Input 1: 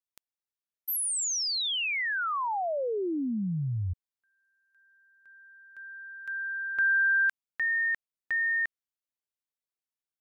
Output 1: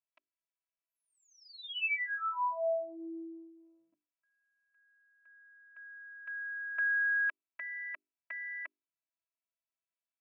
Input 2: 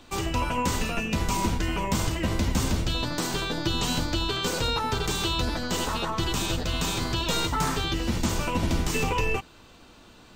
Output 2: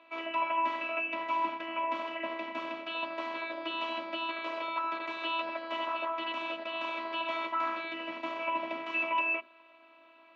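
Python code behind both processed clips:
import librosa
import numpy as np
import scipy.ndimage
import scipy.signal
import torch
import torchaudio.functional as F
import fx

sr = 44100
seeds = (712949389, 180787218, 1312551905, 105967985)

y = fx.robotise(x, sr, hz=330.0)
y = fx.cabinet(y, sr, low_hz=260.0, low_slope=24, high_hz=2900.0, hz=(360.0, 600.0, 1100.0, 2500.0), db=(-9, 9, 9, 10))
y = fx.hum_notches(y, sr, base_hz=50, count=8)
y = F.gain(torch.from_numpy(y), -5.5).numpy()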